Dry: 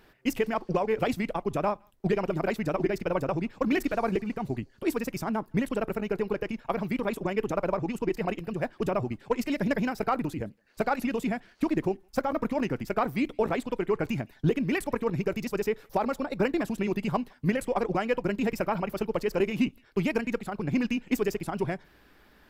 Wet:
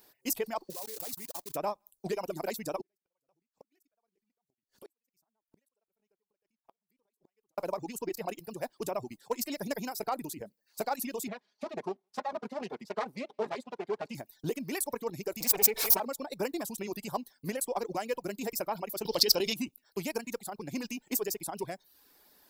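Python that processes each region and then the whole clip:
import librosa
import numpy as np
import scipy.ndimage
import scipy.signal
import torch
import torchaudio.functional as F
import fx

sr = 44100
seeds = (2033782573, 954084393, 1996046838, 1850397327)

y = fx.chain(x, sr, fx.block_float(bits=3),
    fx.level_steps(step_db=19), at=(0.7, 1.56))
y = fx.chain(y, sr, fx.chopper(hz=2.2, depth_pct=60, duty_pct=35),
    fx.gate_flip(shuts_db=-32.0, range_db=-41), at=(2.81, 7.58))
y = fx.chain(y, sr, fx.lower_of_two(delay_ms=4.8),
    fx.bandpass_edges(low_hz=120.0, high_hz=3300.0), at=(11.28, 14.15))
y = fx.chain(y, sr, fx.lower_of_two(delay_ms=4.5),
    fx.peak_eq(hz=2300.0, db=8.5, octaves=0.29),
    fx.pre_swell(db_per_s=25.0), at=(15.4, 16.0))
y = fx.chain(y, sr, fx.band_shelf(hz=4100.0, db=14.0, octaves=1.1),
    fx.env_flatten(amount_pct=70), at=(19.05, 19.54))
y = fx.riaa(y, sr, side='recording')
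y = fx.dereverb_blind(y, sr, rt60_s=0.5)
y = fx.band_shelf(y, sr, hz=2000.0, db=-8.0, octaves=1.7)
y = y * 10.0 ** (-3.0 / 20.0)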